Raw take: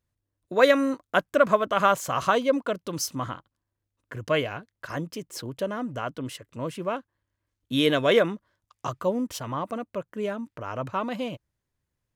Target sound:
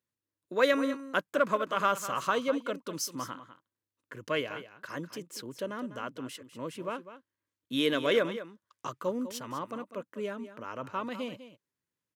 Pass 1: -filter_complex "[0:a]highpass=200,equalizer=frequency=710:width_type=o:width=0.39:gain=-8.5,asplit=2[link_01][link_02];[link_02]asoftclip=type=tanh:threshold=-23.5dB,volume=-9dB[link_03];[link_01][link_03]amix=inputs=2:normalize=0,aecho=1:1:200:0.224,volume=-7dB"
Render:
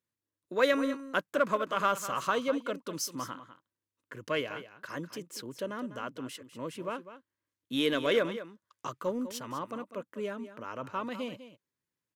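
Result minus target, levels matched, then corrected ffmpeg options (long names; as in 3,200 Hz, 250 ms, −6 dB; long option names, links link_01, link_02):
soft clipping: distortion +7 dB
-filter_complex "[0:a]highpass=200,equalizer=frequency=710:width_type=o:width=0.39:gain=-8.5,asplit=2[link_01][link_02];[link_02]asoftclip=type=tanh:threshold=-15.5dB,volume=-9dB[link_03];[link_01][link_03]amix=inputs=2:normalize=0,aecho=1:1:200:0.224,volume=-7dB"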